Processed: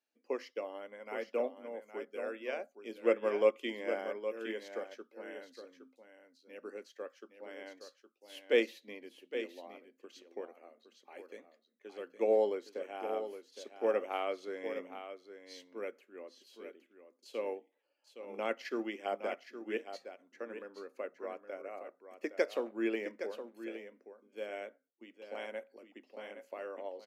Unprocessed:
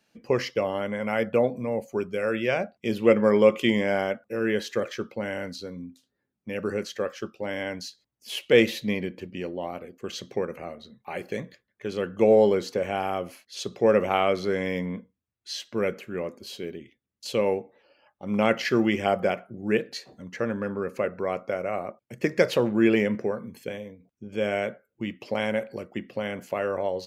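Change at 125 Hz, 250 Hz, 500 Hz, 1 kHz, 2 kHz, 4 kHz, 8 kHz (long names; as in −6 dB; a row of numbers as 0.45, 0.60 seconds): below −30 dB, −16.5 dB, −11.0 dB, −12.5 dB, −13.0 dB, −14.5 dB, below −15 dB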